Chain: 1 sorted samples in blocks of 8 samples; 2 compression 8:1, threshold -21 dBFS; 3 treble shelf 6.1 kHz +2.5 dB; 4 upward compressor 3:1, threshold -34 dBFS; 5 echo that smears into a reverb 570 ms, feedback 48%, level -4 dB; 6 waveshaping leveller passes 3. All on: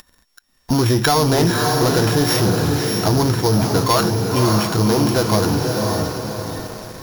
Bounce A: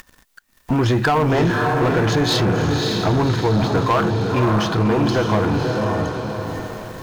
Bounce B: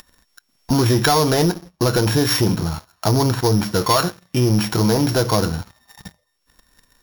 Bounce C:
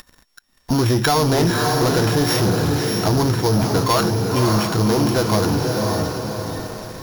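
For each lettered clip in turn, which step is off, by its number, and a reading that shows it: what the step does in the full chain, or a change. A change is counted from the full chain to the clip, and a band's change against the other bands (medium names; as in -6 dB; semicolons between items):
1, distortion -10 dB; 5, momentary loudness spread change -1 LU; 3, crest factor change -1.5 dB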